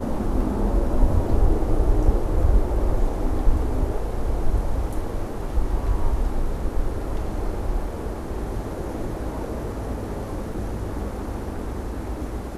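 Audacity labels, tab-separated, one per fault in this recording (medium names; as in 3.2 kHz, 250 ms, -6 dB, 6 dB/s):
10.540000	10.540000	dropout 2.9 ms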